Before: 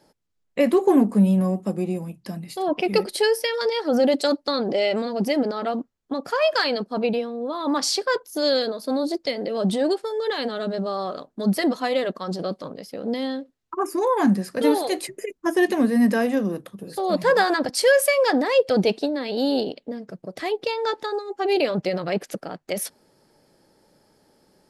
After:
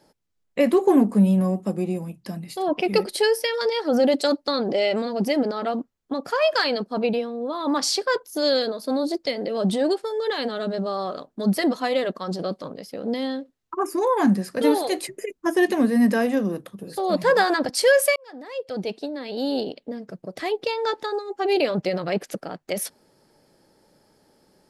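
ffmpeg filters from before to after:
-filter_complex "[0:a]asplit=2[s0][s1];[s0]atrim=end=18.16,asetpts=PTS-STARTPTS,afade=t=out:st=18.156:d=0.004:c=hsin[s2];[s1]atrim=start=18.16,asetpts=PTS-STARTPTS,afade=t=in:d=1.9[s3];[s2][s3]concat=n=2:v=0:a=1"

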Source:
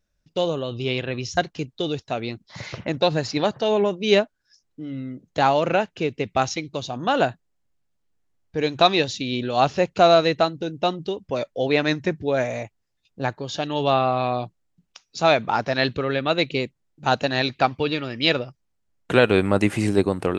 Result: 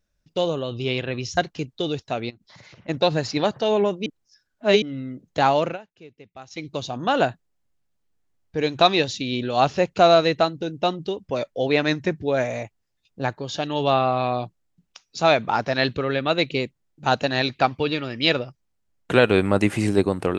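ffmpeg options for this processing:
-filter_complex "[0:a]asplit=3[s0][s1][s2];[s0]afade=t=out:st=2.29:d=0.02[s3];[s1]acompressor=threshold=0.00501:ratio=5:attack=3.2:release=140:knee=1:detection=peak,afade=t=in:st=2.29:d=0.02,afade=t=out:st=2.88:d=0.02[s4];[s2]afade=t=in:st=2.88:d=0.02[s5];[s3][s4][s5]amix=inputs=3:normalize=0,asplit=5[s6][s7][s8][s9][s10];[s6]atrim=end=4.062[s11];[s7]atrim=start=4.058:end=4.822,asetpts=PTS-STARTPTS,areverse[s12];[s8]atrim=start=4.818:end=5.78,asetpts=PTS-STARTPTS,afade=t=out:st=0.802:d=0.16:silence=0.0944061[s13];[s9]atrim=start=5.78:end=6.5,asetpts=PTS-STARTPTS,volume=0.0944[s14];[s10]atrim=start=6.5,asetpts=PTS-STARTPTS,afade=t=in:d=0.16:silence=0.0944061[s15];[s11][s12]acrossfade=d=0.004:c1=hsin:c2=hsin[s16];[s13][s14][s15]concat=n=3:v=0:a=1[s17];[s16][s17]acrossfade=d=0.004:c1=hsin:c2=hsin"

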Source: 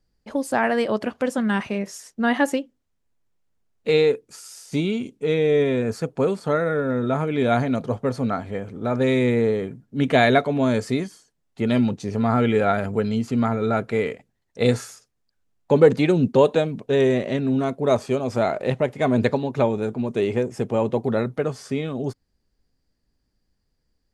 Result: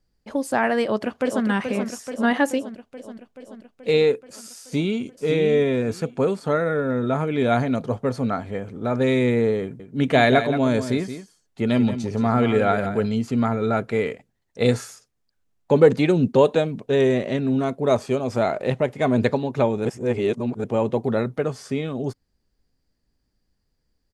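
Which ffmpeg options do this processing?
-filter_complex "[0:a]asplit=2[s0][s1];[s1]afade=t=in:st=0.82:d=0.01,afade=t=out:st=1.45:d=0.01,aecho=0:1:430|860|1290|1720|2150|2580|3010|3440|3870|4300|4730:0.473151|0.331206|0.231844|0.162291|0.113604|0.0795225|0.0556658|0.038966|0.0272762|0.0190934|0.0133654[s2];[s0][s2]amix=inputs=2:normalize=0,asettb=1/sr,asplit=3[s3][s4][s5];[s3]atrim=end=2.484[s6];[s4]atrim=start=2.48:end=4.01,asetpts=PTS-STARTPTS,afade=t=in:d=0.004:c=qsin,afade=t=out:st=1.526:d=0.004:c=qsin,equalizer=f=1300:w=1.5:g=-5.5[s7];[s5]atrim=start=4.006[s8];[s6][s7]acrossfade=d=0.004:c1=hsin:c2=qsin[s9];[s9][s8]acrossfade=d=0.004:c1=qsin:c2=hsin,asplit=2[s10][s11];[s11]afade=t=in:st=4.61:d=0.01,afade=t=out:st=5.18:d=0.01,aecho=0:1:560|1120|1680:0.501187|0.100237|0.0200475[s12];[s10][s12]amix=inputs=2:normalize=0,asettb=1/sr,asplit=3[s13][s14][s15];[s13]atrim=end=9.624[s16];[s14]atrim=start=9.62:end=13.07,asetpts=PTS-STARTPTS,afade=t=in:d=0.004:c=qsin,afade=t=out:st=3.446:d=0.004:c=qsin,aecho=1:1:174:0.299,atrim=end_sample=152145[s17];[s15]atrim=start=13.066[s18];[s16][s17]acrossfade=d=0.004:c1=hsin:c2=qsin[s19];[s19][s18]acrossfade=d=0.004:c1=qsin:c2=hsin,asplit=3[s20][s21][s22];[s20]atrim=end=19.852[s23];[s21]atrim=start=19.848:end=20.642,asetpts=PTS-STARTPTS,areverse[s24];[s22]atrim=start=20.638[s25];[s23][s24]acrossfade=d=0.004:c1=hsin:c2=hsin[s26];[s26][s25]acrossfade=d=0.004:c1=hsin:c2=hsin"

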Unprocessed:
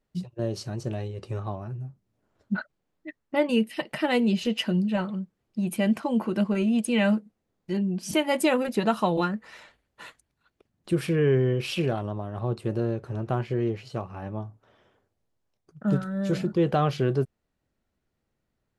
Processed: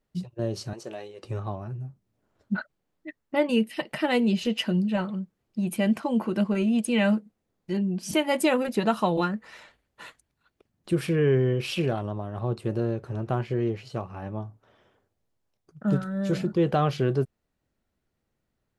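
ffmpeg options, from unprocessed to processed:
-filter_complex "[0:a]asettb=1/sr,asplit=3[s0][s1][s2];[s0]atrim=end=0.734[s3];[s1]atrim=start=0.73:end=1.24,asetpts=PTS-STARTPTS,afade=t=in:d=0.004:c=qsin,afade=t=out:st=0.506:d=0.004:c=qsin,highpass=420[s4];[s2]atrim=start=1.236[s5];[s3][s4]acrossfade=d=0.004:c1=hsin:c2=qsin[s6];[s6][s5]acrossfade=d=0.004:c1=qsin:c2=hsin"

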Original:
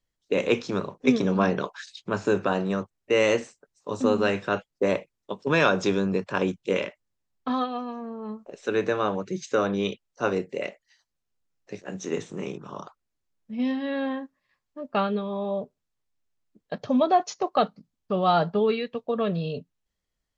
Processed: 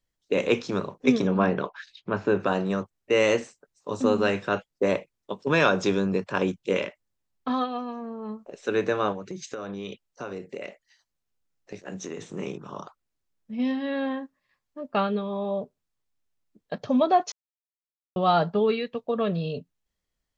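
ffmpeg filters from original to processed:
-filter_complex "[0:a]asettb=1/sr,asplit=3[s0][s1][s2];[s0]atrim=end=1.274[s3];[s1]atrim=start=1.27:end=2.4,asetpts=PTS-STARTPTS,afade=t=in:d=0.004:c=qsin,afade=t=out:st=1.126:d=0.004:c=qsin,lowpass=3000[s4];[s2]atrim=start=2.396[s5];[s3][s4]acrossfade=d=0.004:c1=hsin:c2=qsin[s6];[s6][s5]acrossfade=d=0.004:c1=qsin:c2=hsin,asettb=1/sr,asplit=3[s7][s8][s9];[s7]atrim=end=9.124[s10];[s8]atrim=start=9.12:end=12.23,asetpts=PTS-STARTPTS,afade=t=in:d=0.004:c=qsin,afade=t=out:st=3.106:d=0.004:c=qsin,acompressor=threshold=0.0316:ratio=12:attack=3.2:release=140:knee=1:detection=peak[s11];[s9]atrim=start=12.226[s12];[s10][s11]acrossfade=d=0.004:c1=hsin:c2=qsin[s13];[s13][s12]acrossfade=d=0.004:c1=qsin:c2=hsin,asplit=3[s14][s15][s16];[s14]atrim=end=17.32,asetpts=PTS-STARTPTS,afade=t=out:st=17.316:d=0.004:c=hsin[s17];[s15]atrim=start=17.32:end=18.16,asetpts=PTS-STARTPTS,volume=0[s18];[s16]atrim=start=18.16,asetpts=PTS-STARTPTS,afade=t=in:d=0.004:c=hsin[s19];[s17][s18][s19]concat=n=3:v=0:a=1"

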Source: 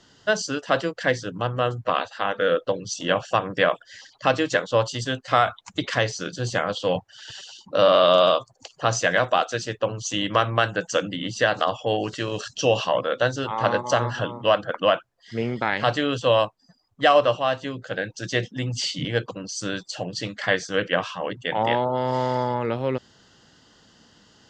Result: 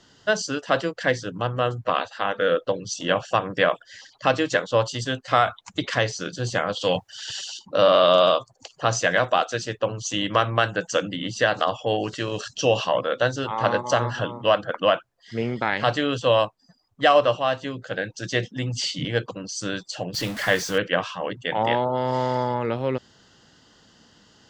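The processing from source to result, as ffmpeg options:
-filter_complex "[0:a]asettb=1/sr,asplit=3[s0][s1][s2];[s0]atrim=end=6.814[s3];[s1]atrim=start=6.81:end=7.59,asetpts=PTS-STARTPTS,afade=t=in:d=0.004:c=qsin,afade=t=out:st=0.776:d=0.004:c=qsin,highshelf=f=2700:g=11[s4];[s2]atrim=start=7.586[s5];[s3][s4]acrossfade=d=0.004:c1=hsin:c2=qsin[s6];[s6][s5]acrossfade=d=0.004:c1=qsin:c2=hsin,asettb=1/sr,asplit=3[s7][s8][s9];[s7]atrim=end=20.144[s10];[s8]atrim=start=20.14:end=20.78,asetpts=PTS-STARTPTS,afade=t=in:d=0.004:c=qsin,afade=t=out:st=0.636:d=0.004:c=qsin,aeval=exprs='val(0)+0.5*0.0335*sgn(val(0))':c=same[s11];[s9]atrim=start=20.776[s12];[s10][s11]acrossfade=d=0.004:c1=hsin:c2=qsin[s13];[s13][s12]acrossfade=d=0.004:c1=qsin:c2=hsin"

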